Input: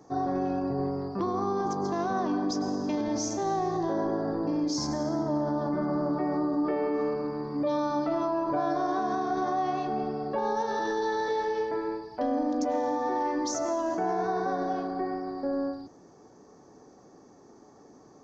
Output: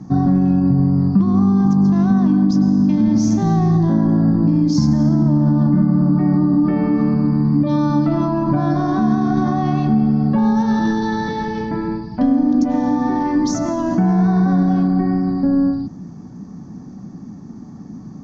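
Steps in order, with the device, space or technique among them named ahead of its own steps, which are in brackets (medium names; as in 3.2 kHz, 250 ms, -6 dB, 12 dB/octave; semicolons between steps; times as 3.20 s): jukebox (low-pass 6.2 kHz 12 dB/octave; resonant low shelf 300 Hz +14 dB, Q 3; compression, threshold -19 dBFS, peak gain reduction 9 dB); trim +8 dB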